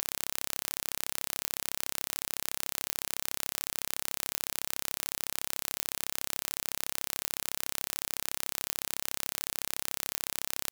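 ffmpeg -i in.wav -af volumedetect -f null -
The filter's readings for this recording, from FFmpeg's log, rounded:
mean_volume: -36.4 dB
max_volume: -5.2 dB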